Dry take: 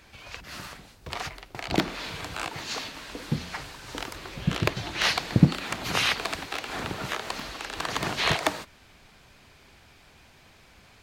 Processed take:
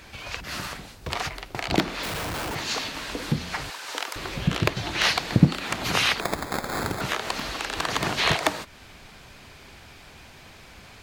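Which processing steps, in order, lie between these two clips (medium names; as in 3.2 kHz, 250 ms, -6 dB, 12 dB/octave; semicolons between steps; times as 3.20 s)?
3.70–4.16 s: high-pass 590 Hz 12 dB/octave; in parallel at +3 dB: compression, threshold -36 dBFS, peak gain reduction 23.5 dB; 2.03–2.55 s: on the sum: Schmitt trigger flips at -36.5 dBFS; 6.20–7.01 s: sample-rate reducer 2.9 kHz, jitter 0%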